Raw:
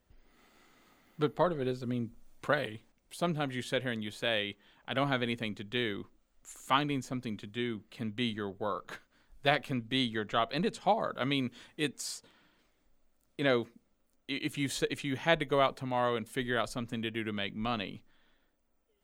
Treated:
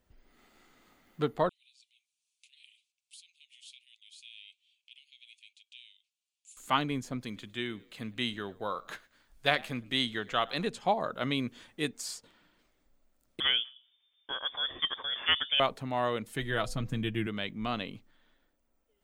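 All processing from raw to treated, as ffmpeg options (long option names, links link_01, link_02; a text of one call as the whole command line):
ffmpeg -i in.wav -filter_complex "[0:a]asettb=1/sr,asplit=3[link_01][link_02][link_03];[link_01]atrim=end=1.494[link_04];[link_02]atrim=start=1.49:end=6.57,asetpts=PTS-STARTPTS,afade=type=in:duration=0.004:curve=qsin,afade=type=out:start_time=5.076:duration=0.004:curve=qsin,acompressor=threshold=-41dB:ratio=2.5:attack=3.2:release=140:knee=1:detection=peak,flanger=delay=3:depth=3.4:regen=82:speed=1.2:shape=sinusoidal,asuperpass=centerf=5300:order=20:qfactor=0.66[link_05];[link_03]atrim=start=6.566[link_06];[link_04][link_05]acrossfade=duration=0.004:curve1=hsin:curve2=qsin[link_07];[link_07][link_06]acrossfade=duration=0.004:curve1=qsin:curve2=hsin,asettb=1/sr,asplit=3[link_08][link_09][link_10];[link_08]atrim=end=7.214[link_11];[link_09]atrim=start=7.21:end=10.67,asetpts=PTS-STARTPTS,afade=type=in:duration=0.004:curve=qsin,afade=type=out:start_time=3.456:duration=0.004:curve=qsin,tiltshelf=frequency=910:gain=-3.5,asplit=3[link_12][link_13][link_14];[link_13]adelay=109,afreqshift=59,volume=-23dB[link_15];[link_14]adelay=218,afreqshift=118,volume=-32.6dB[link_16];[link_12][link_15][link_16]amix=inputs=3:normalize=0,atrim=end_sample=152586[link_17];[link_10]atrim=start=10.666[link_18];[link_11][link_17]acrossfade=duration=0.004:curve1=hsin:curve2=qsin[link_19];[link_19][link_18]acrossfade=duration=0.004:curve1=qsin:curve2=hsin,asettb=1/sr,asplit=3[link_20][link_21][link_22];[link_20]atrim=end=13.404[link_23];[link_21]atrim=start=13.4:end=15.6,asetpts=PTS-STARTPTS,afade=type=in:duration=0.004:curve=qsin,afade=type=out:start_time=2.196:duration=0.004:curve=qsin,bandreject=frequency=128.4:width_type=h:width=4,bandreject=frequency=256.8:width_type=h:width=4,bandreject=frequency=385.2:width_type=h:width=4,bandreject=frequency=513.6:width_type=h:width=4,bandreject=frequency=642:width_type=h:width=4,bandreject=frequency=770.4:width_type=h:width=4,bandreject=frequency=898.8:width_type=h:width=4,bandreject=frequency=1027.2:width_type=h:width=4,lowpass=frequency=3100:width_type=q:width=0.5098,lowpass=frequency=3100:width_type=q:width=0.6013,lowpass=frequency=3100:width_type=q:width=0.9,lowpass=frequency=3100:width_type=q:width=2.563,afreqshift=-3600[link_24];[link_22]atrim=start=15.596[link_25];[link_23][link_24]acrossfade=duration=0.004:curve1=hsin:curve2=qsin[link_26];[link_26][link_25]acrossfade=duration=0.004:curve1=qsin:curve2=hsin,asettb=1/sr,asplit=3[link_27][link_28][link_29];[link_27]atrim=end=16.244[link_30];[link_28]atrim=start=16.24:end=17.27,asetpts=PTS-STARTPTS,afade=type=in:duration=0.004:curve=qsin,afade=type=out:start_time=1.026:duration=0.004:curve=qsin,bandreject=frequency=250.8:width_type=h:width=4,bandreject=frequency=501.6:width_type=h:width=4,bandreject=frequency=752.4:width_type=h:width=4,asubboost=boost=10:cutoff=240,aecho=1:1:6.2:0.43,atrim=end_sample=45423[link_31];[link_29]atrim=start=17.266[link_32];[link_30][link_31]acrossfade=duration=0.004:curve1=hsin:curve2=qsin[link_33];[link_33][link_32]acrossfade=duration=0.004:curve1=qsin:curve2=hsin" out.wav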